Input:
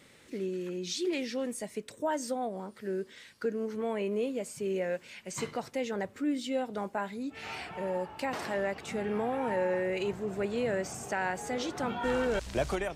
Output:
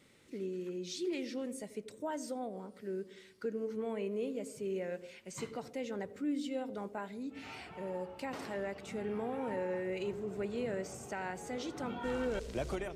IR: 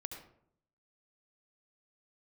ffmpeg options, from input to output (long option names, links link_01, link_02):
-filter_complex "[0:a]bandreject=frequency=1700:width=19,asplit=2[link_01][link_02];[link_02]lowshelf=frequency=640:width_type=q:width=1.5:gain=10.5[link_03];[1:a]atrim=start_sample=2205,asetrate=40131,aresample=44100[link_04];[link_03][link_04]afir=irnorm=-1:irlink=0,volume=-14dB[link_05];[link_01][link_05]amix=inputs=2:normalize=0,volume=-8.5dB"